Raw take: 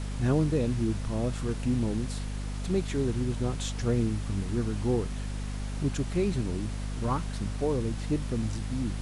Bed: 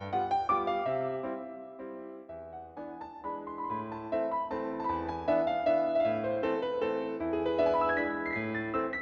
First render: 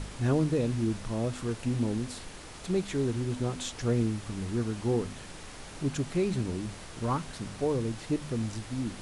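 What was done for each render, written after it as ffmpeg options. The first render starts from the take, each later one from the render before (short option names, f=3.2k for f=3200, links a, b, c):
-af "bandreject=f=50:t=h:w=4,bandreject=f=100:t=h:w=4,bandreject=f=150:t=h:w=4,bandreject=f=200:t=h:w=4,bandreject=f=250:t=h:w=4"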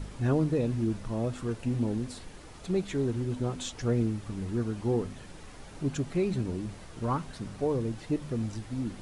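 -af "afftdn=nr=7:nf=-45"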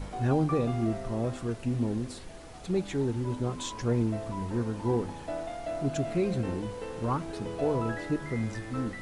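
-filter_complex "[1:a]volume=-8dB[a];[0:a][a]amix=inputs=2:normalize=0"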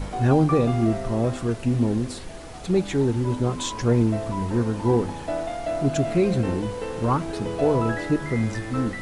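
-af "volume=7.5dB"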